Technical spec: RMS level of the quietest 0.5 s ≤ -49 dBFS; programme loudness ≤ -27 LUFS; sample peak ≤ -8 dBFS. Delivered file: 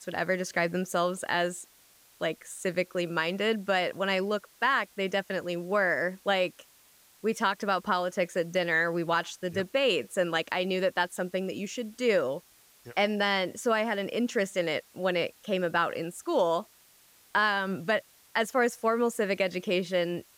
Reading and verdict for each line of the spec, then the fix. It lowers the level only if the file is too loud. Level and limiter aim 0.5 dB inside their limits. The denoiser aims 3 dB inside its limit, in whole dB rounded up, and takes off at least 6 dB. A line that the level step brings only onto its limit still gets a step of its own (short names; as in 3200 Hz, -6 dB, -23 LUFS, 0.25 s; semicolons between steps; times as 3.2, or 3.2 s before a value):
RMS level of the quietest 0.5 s -60 dBFS: OK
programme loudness -29.0 LUFS: OK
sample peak -15.0 dBFS: OK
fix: none